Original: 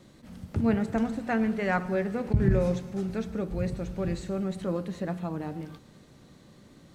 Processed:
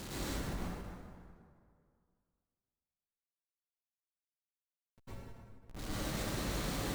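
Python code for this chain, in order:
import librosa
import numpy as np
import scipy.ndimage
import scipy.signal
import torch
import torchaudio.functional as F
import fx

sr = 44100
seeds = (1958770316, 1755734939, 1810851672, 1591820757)

y = fx.octave_divider(x, sr, octaves=2, level_db=-1.0)
y = fx.highpass(y, sr, hz=45.0, slope=6)
y = fx.high_shelf(y, sr, hz=3200.0, db=7.0)
y = fx.over_compress(y, sr, threshold_db=-56.0, ratio=-0.5)
y = fx.schmitt(y, sr, flips_db=-57.0)
y = fx.rev_plate(y, sr, seeds[0], rt60_s=2.2, hf_ratio=0.6, predelay_ms=90, drr_db=-8.0)
y = fx.end_taper(y, sr, db_per_s=140.0)
y = y * 10.0 ** (3.5 / 20.0)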